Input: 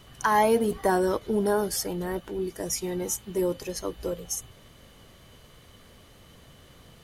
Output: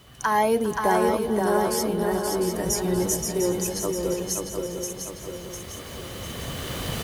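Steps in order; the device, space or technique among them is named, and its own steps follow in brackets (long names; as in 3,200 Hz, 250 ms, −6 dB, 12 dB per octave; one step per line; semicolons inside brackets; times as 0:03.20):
cheap recorder with automatic gain (white noise bed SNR 37 dB; camcorder AGC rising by 8.3 dB per second)
high-pass filter 42 Hz
0:02.64–0:03.25: bass and treble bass +9 dB, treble +3 dB
single-tap delay 402 ms −17.5 dB
feedback echo with a long and a short gap by turns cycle 701 ms, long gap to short 3 to 1, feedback 47%, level −4 dB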